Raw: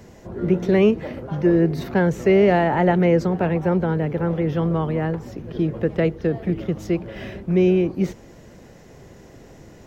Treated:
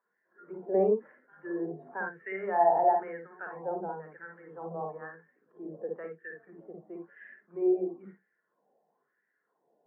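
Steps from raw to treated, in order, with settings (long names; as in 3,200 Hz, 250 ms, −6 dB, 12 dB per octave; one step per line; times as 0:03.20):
LFO wah 1 Hz 700–1,800 Hz, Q 3.2
convolution reverb RT60 0.15 s, pre-delay 52 ms, DRR 3 dB
every bin expanded away from the loudest bin 1.5 to 1
level −7 dB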